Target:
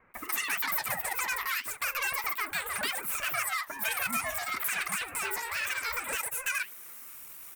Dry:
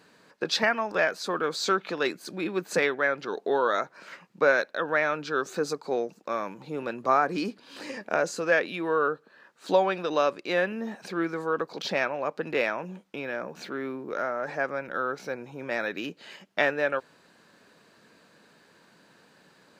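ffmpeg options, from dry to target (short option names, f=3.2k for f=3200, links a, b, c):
-filter_complex "[0:a]equalizer=f=490:t=o:w=1.4:g=10,acontrast=70,adynamicequalizer=threshold=0.0251:dfrequency=1800:dqfactor=1.8:tfrequency=1800:tqfactor=1.8:attack=5:release=100:ratio=0.375:range=3:mode=cutabove:tftype=bell,acrossover=split=1500|3800[a][b][c];[a]acompressor=threshold=-17dB:ratio=4[d];[b]acompressor=threshold=-41dB:ratio=4[e];[c]acompressor=threshold=-49dB:ratio=4[f];[d][e][f]amix=inputs=3:normalize=0,atempo=0.74,aexciter=amount=14.7:drive=3.9:freq=2.3k,asoftclip=type=tanh:threshold=-16dB,flanger=delay=8.6:depth=9:regen=-72:speed=0.36:shape=triangular,asetrate=156114,aresample=44100,flanger=delay=3.7:depth=8.8:regen=69:speed=1.8:shape=sinusoidal,acrossover=split=1300[g][h];[h]adelay=140[i];[g][i]amix=inputs=2:normalize=0,aeval=exprs='val(0)*sin(2*PI*470*n/s+470*0.2/0.96*sin(2*PI*0.96*n/s))':c=same,volume=3dB"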